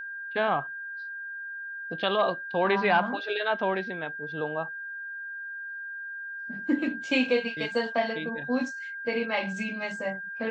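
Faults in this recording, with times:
whine 1.6 kHz -35 dBFS

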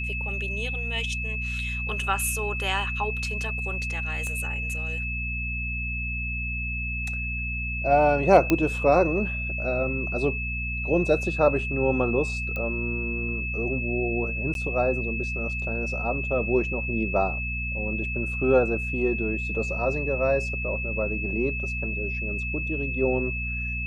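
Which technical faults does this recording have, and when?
hum 60 Hz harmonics 4 -32 dBFS
whine 2.6 kHz -30 dBFS
4.27 s: pop -21 dBFS
8.50 s: pop -8 dBFS
12.56 s: pop -19 dBFS
14.54–14.55 s: dropout 12 ms

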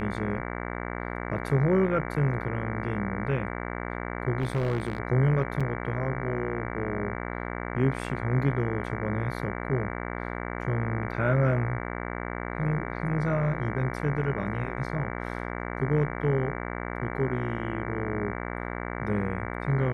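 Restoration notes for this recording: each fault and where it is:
buzz 60 Hz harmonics 38 -34 dBFS
4.39–4.98 s: clipped -22.5 dBFS
5.60–5.61 s: dropout 5.7 ms

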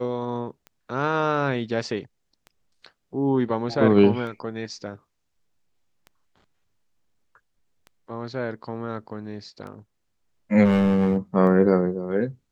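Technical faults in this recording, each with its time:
tick 33 1/3 rpm -27 dBFS
10.64–11.17 s: clipped -15.5 dBFS

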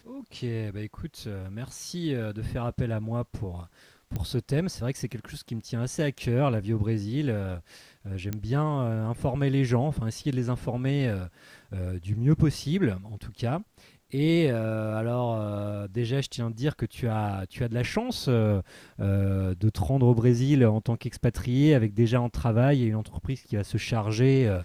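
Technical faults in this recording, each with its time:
4.16 s: pop -19 dBFS
8.33 s: pop -17 dBFS

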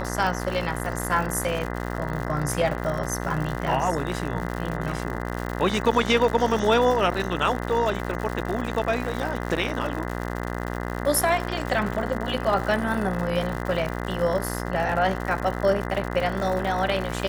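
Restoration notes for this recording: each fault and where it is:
buzz 60 Hz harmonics 34 -30 dBFS
crackle 140 per s -29 dBFS

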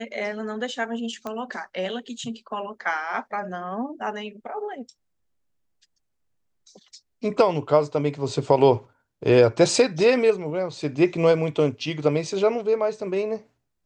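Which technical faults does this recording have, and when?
1.27 s: pop -18 dBFS

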